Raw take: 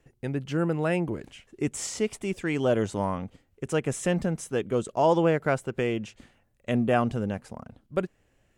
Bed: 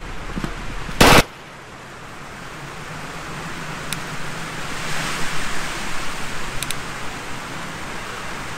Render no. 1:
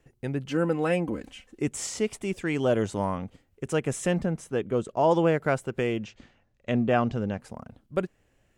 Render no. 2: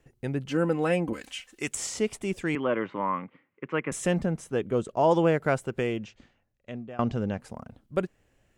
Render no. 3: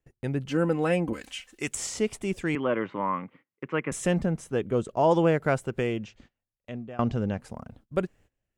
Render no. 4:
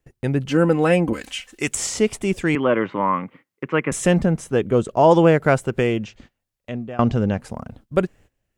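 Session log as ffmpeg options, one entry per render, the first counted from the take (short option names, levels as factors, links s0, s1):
-filter_complex "[0:a]asettb=1/sr,asplit=3[s0][s1][s2];[s0]atrim=end=0.484[s3];[s1]atrim=start=0.48:end=1.62,asetpts=PTS-STARTPTS,afade=t=in:d=0.004:c=qsin,afade=t=out:st=1.136:d=0.004:c=qsin,aecho=1:1:3.9:0.65,atrim=end_sample=50274[s4];[s2]atrim=start=1.616[s5];[s3][s4]acrossfade=d=0.004:c1=hsin:c2=qsin[s6];[s6][s5]acrossfade=d=0.004:c1=qsin:c2=hsin,asettb=1/sr,asplit=3[s7][s8][s9];[s7]atrim=end=4.184[s10];[s8]atrim=start=4.18:end=5.11,asetpts=PTS-STARTPTS,afade=t=in:d=0.004:c=qsin,afade=t=out:st=0.926:d=0.004:c=qsin,highshelf=f=3600:g=-8[s11];[s9]atrim=start=5.106[s12];[s10][s11]acrossfade=d=0.004:c1=hsin:c2=qsin[s13];[s13][s12]acrossfade=d=0.004:c1=qsin:c2=hsin,asettb=1/sr,asplit=3[s14][s15][s16];[s14]atrim=end=6.044[s17];[s15]atrim=start=6.04:end=7.4,asetpts=PTS-STARTPTS,afade=t=in:d=0.004:c=qsin,afade=t=out:st=1.356:d=0.004:c=qsin,lowpass=f=6400:w=0.5412,lowpass=f=6400:w=1.3066[s18];[s16]atrim=start=7.396[s19];[s17][s18]acrossfade=d=0.004:c1=hsin:c2=qsin[s20];[s20][s19]acrossfade=d=0.004:c1=qsin:c2=hsin"
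-filter_complex "[0:a]asettb=1/sr,asplit=3[s0][s1][s2];[s0]atrim=end=1.134[s3];[s1]atrim=start=1.13:end=1.75,asetpts=PTS-STARTPTS,afade=t=in:d=0.004:c=qsin,afade=t=out:st=0.616:d=0.004:c=qsin,tiltshelf=f=830:g=-10[s4];[s2]atrim=start=1.746[s5];[s3][s4]acrossfade=d=0.004:c1=hsin:c2=qsin[s6];[s6][s5]acrossfade=d=0.004:c1=qsin:c2=hsin,asettb=1/sr,asplit=3[s7][s8][s9];[s7]atrim=end=2.554[s10];[s8]atrim=start=2.55:end=3.92,asetpts=PTS-STARTPTS,afade=t=in:d=0.004:c=qsin,afade=t=out:st=1.366:d=0.004:c=qsin,highpass=f=170:w=0.5412,highpass=f=170:w=1.3066,equalizer=f=210:t=q:w=4:g=-6,equalizer=f=420:t=q:w=4:g=-5,equalizer=f=710:t=q:w=4:g=-9,equalizer=f=1100:t=q:w=4:g=9,equalizer=f=2100:t=q:w=4:g=8,lowpass=f=2700:w=0.5412,lowpass=f=2700:w=1.3066[s11];[s9]atrim=start=3.916[s12];[s10][s11]acrossfade=d=0.004:c1=hsin:c2=qsin[s13];[s13][s12]acrossfade=d=0.004:c1=qsin:c2=hsin,asplit=2[s14][s15];[s14]atrim=end=6.99,asetpts=PTS-STARTPTS,afade=t=out:st=5.67:d=1.32:silence=0.0749894[s16];[s15]atrim=start=6.99,asetpts=PTS-STARTPTS,afade=t=in:d=0.004:c=hsin:silence=0.0749894[s17];[s16][s17]concat=n=2:v=0:a=1"
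-af "agate=range=0.112:threshold=0.00178:ratio=16:detection=peak,lowshelf=f=110:g=4.5"
-af "volume=2.51"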